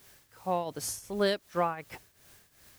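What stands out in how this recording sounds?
a quantiser's noise floor 10 bits, dither triangular
tremolo triangle 2.7 Hz, depth 80%

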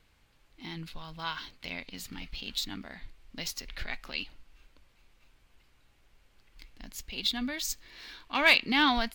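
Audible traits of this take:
background noise floor −66 dBFS
spectral slope −3.5 dB per octave

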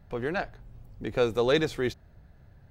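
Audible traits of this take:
background noise floor −56 dBFS
spectral slope −4.0 dB per octave

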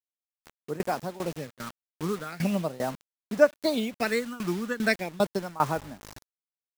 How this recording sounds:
phaser sweep stages 8, 0.39 Hz, lowest notch 600–4,100 Hz
a quantiser's noise floor 8 bits, dither none
tremolo saw down 2.5 Hz, depth 90%

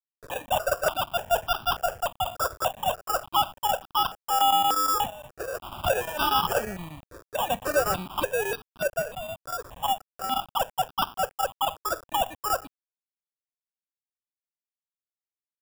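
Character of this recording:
aliases and images of a low sample rate 2,100 Hz, jitter 0%
chopped level 8.4 Hz, depth 65%, duty 85%
a quantiser's noise floor 8 bits, dither none
notches that jump at a steady rate 3.4 Hz 800–2,000 Hz

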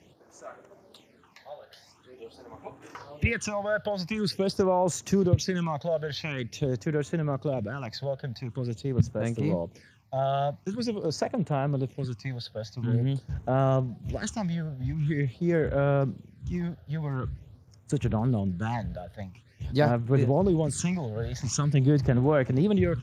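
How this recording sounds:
a quantiser's noise floor 12 bits, dither triangular
phaser sweep stages 8, 0.46 Hz, lowest notch 300–4,600 Hz
Speex

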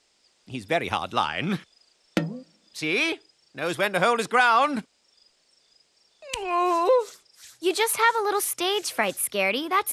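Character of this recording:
background noise floor −67 dBFS
spectral slope −3.5 dB per octave

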